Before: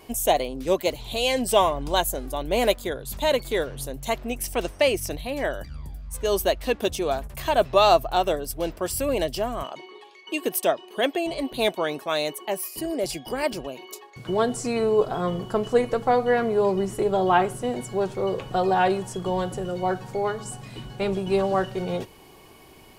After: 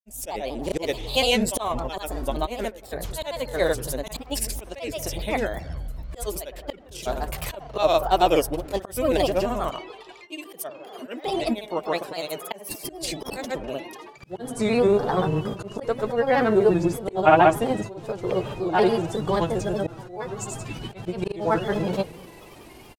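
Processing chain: bucket-brigade echo 84 ms, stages 1024, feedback 65%, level -19 dB; slow attack 338 ms; granulator, grains 21 per s, pitch spread up and down by 3 st; trim +5 dB

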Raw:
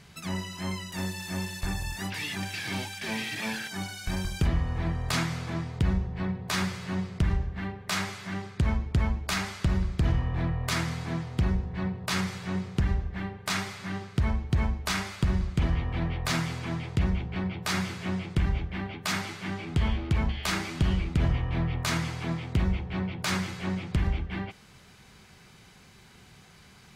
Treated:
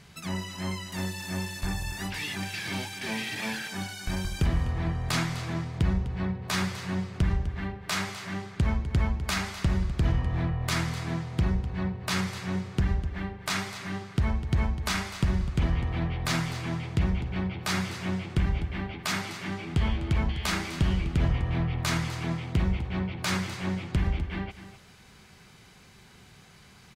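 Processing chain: delay 252 ms -13 dB

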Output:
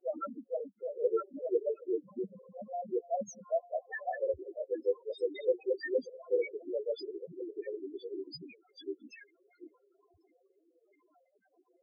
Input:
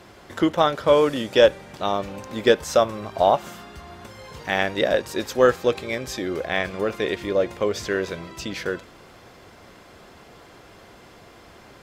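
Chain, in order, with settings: tilt EQ +2.5 dB/octave; granulator 100 ms, spray 987 ms; loudest bins only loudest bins 1; formant shift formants -5 st

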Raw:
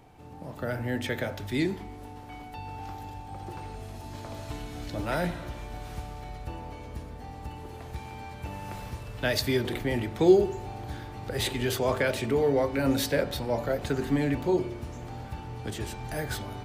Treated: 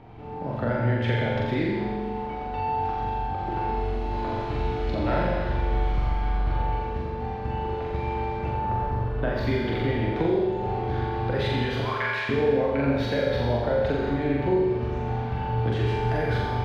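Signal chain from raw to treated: 5.85–6.59 s: comb filter that takes the minimum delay 0.93 ms; 8.50–9.41 s: high-order bell 4.4 kHz -10.5 dB 2.8 oct; 11.81–12.29 s: high-pass 1 kHz 24 dB/octave; compression, threshold -31 dBFS, peak gain reduction 16.5 dB; distance through air 310 m; flutter echo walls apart 7.4 m, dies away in 0.97 s; Schroeder reverb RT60 1.4 s, combs from 26 ms, DRR 3 dB; trim +7 dB

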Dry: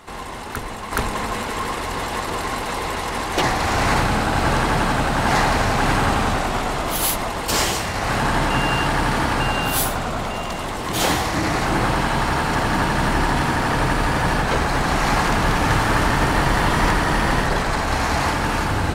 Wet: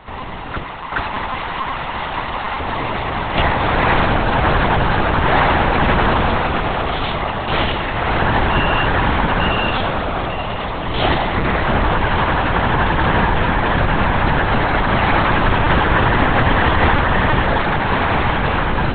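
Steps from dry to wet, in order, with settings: 0.63–2.60 s: high-pass 480 Hz; LPC vocoder at 8 kHz pitch kept; trim +4 dB

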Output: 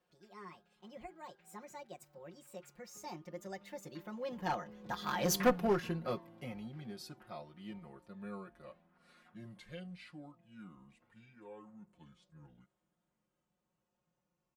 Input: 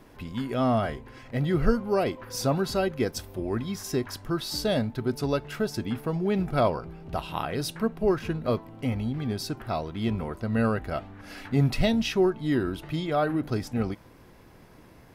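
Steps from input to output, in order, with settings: gliding tape speed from 154% -> 54%; Doppler pass-by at 5.45 s, 23 m/s, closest 2.5 m; high-pass 170 Hz 6 dB/octave; band-stop 360 Hz, Q 12; comb 5.6 ms, depth 89%; in parallel at -0.5 dB: gain riding within 3 dB 0.5 s; on the sum: one-sided clip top -27 dBFS; trim -2 dB

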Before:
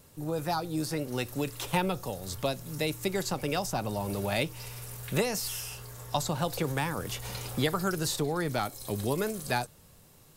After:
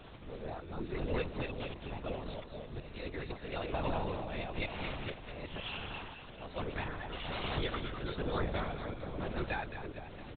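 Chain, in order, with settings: chunks repeated in reverse 133 ms, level -1.5 dB; Bessel high-pass 160 Hz; comb 5.7 ms, depth 65%; compression 10:1, threshold -38 dBFS, peak gain reduction 18.5 dB; slow attack 532 ms; added noise pink -61 dBFS; tremolo triangle 1.1 Hz, depth 75%; two-band feedback delay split 740 Hz, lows 470 ms, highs 223 ms, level -7.5 dB; LPC vocoder at 8 kHz whisper; trim +8.5 dB

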